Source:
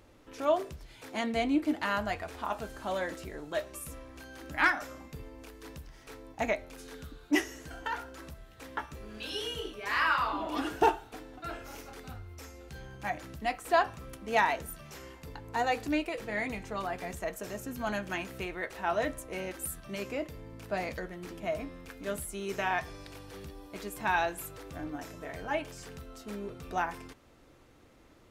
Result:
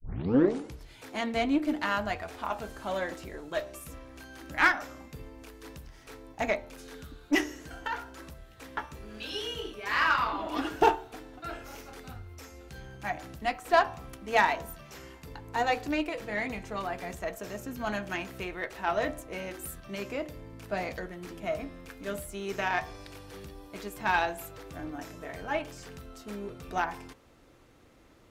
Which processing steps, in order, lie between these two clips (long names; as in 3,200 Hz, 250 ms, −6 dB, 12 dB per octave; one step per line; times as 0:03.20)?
turntable start at the beginning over 0.82 s
hum removal 74.84 Hz, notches 15
harmonic generator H 7 −30 dB, 8 −32 dB, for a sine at −12.5 dBFS
dynamic equaliser 9,900 Hz, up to −6 dB, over −59 dBFS, Q 1.3
level +3 dB